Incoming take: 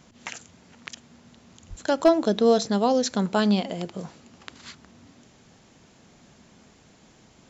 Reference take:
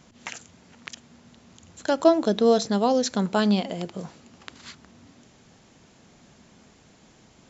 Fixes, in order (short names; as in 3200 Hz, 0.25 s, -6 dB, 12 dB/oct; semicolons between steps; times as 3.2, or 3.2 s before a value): clip repair -8.5 dBFS; de-plosive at 1.69